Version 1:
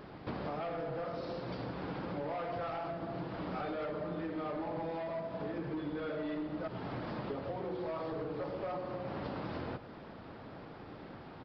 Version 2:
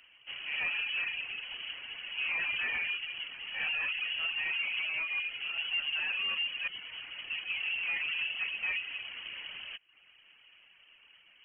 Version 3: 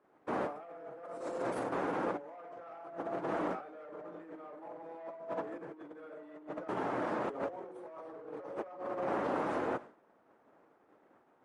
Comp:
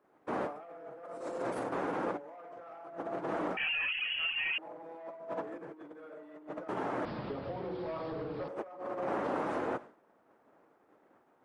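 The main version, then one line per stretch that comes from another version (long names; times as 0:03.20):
3
0:03.57–0:04.58: punch in from 2
0:07.05–0:08.48: punch in from 1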